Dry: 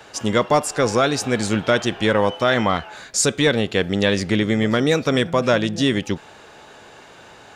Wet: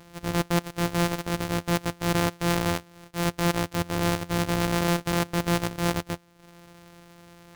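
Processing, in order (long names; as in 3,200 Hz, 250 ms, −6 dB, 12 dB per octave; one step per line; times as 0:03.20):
samples sorted by size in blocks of 256 samples
transient designer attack −6 dB, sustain −10 dB
level −5 dB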